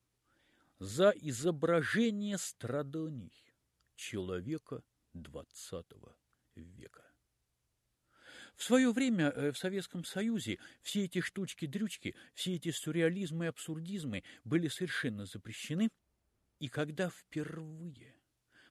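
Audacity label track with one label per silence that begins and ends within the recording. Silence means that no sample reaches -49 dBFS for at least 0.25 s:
3.280000	3.990000	silence
4.790000	5.150000	silence
6.070000	6.570000	silence
6.970000	8.280000	silence
15.880000	16.610000	silence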